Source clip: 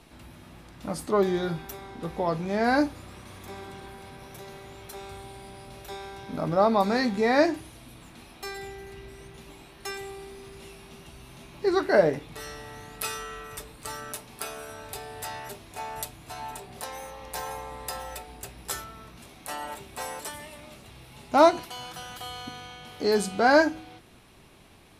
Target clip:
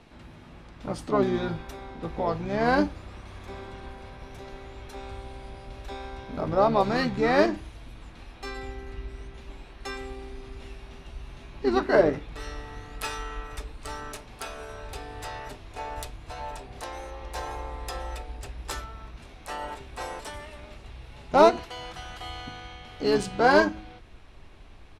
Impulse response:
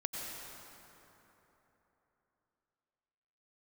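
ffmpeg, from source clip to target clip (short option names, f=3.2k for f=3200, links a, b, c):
-filter_complex "[0:a]adynamicsmooth=sensitivity=2.5:basefreq=6.1k,asubboost=boost=6:cutoff=64,asplit=2[a][b];[b]asetrate=29433,aresample=44100,atempo=1.49831,volume=-6dB[c];[a][c]amix=inputs=2:normalize=0"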